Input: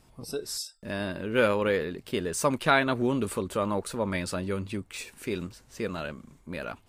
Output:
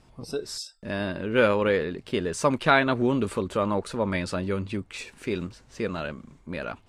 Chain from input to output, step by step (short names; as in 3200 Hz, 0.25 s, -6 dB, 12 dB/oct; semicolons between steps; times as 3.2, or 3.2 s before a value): air absorption 61 m; gain +3 dB